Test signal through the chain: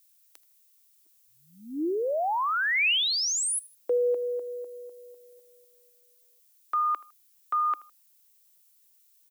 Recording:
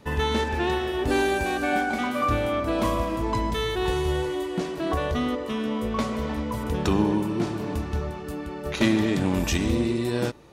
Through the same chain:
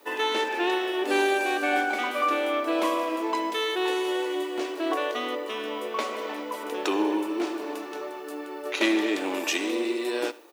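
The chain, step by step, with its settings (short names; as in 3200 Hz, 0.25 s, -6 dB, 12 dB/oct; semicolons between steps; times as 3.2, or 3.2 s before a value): elliptic high-pass 310 Hz, stop band 70 dB; added noise violet -63 dBFS; dynamic EQ 2600 Hz, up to +5 dB, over -47 dBFS, Q 1.8; on a send: feedback echo 79 ms, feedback 32%, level -20.5 dB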